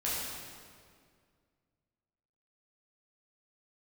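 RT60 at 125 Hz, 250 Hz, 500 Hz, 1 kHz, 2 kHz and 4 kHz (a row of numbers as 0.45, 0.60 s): 2.5, 2.4, 2.2, 1.9, 1.8, 1.6 s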